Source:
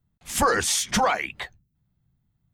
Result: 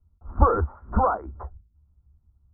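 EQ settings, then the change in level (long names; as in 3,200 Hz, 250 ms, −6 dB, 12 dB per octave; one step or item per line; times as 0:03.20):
Chebyshev low-pass with heavy ripple 1,400 Hz, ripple 3 dB
high-frequency loss of the air 170 metres
low shelf with overshoot 100 Hz +11 dB, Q 3
+3.0 dB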